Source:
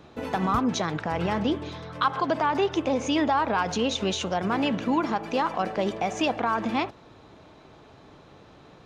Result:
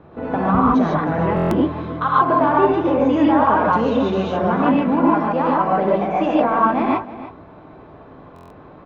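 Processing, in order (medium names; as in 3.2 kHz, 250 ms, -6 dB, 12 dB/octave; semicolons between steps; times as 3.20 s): low-pass 1.4 kHz 12 dB/octave; sine folder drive 6 dB, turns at -3 dBFS; on a send: delay 314 ms -15 dB; on the sum: gated-style reverb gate 170 ms rising, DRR -5 dB; buffer glitch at 1.35/8.34 s, samples 1024, times 6; trim -6 dB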